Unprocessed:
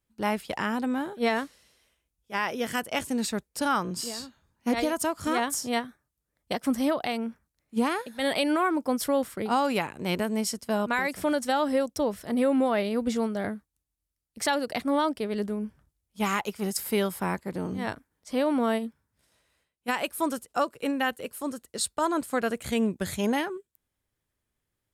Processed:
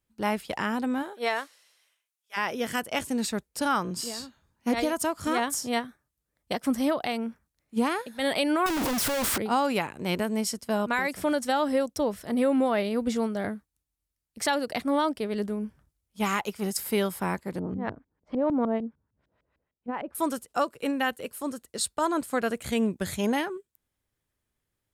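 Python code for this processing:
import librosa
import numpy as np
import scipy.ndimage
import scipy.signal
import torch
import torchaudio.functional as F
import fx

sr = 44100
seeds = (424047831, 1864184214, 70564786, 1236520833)

y = fx.highpass(x, sr, hz=fx.line((1.02, 400.0), (2.36, 1400.0)), slope=12, at=(1.02, 2.36), fade=0.02)
y = fx.clip_1bit(y, sr, at=(8.66, 9.38))
y = fx.filter_lfo_lowpass(y, sr, shape='saw_up', hz=6.6, low_hz=270.0, high_hz=2600.0, q=0.79, at=(17.59, 20.15))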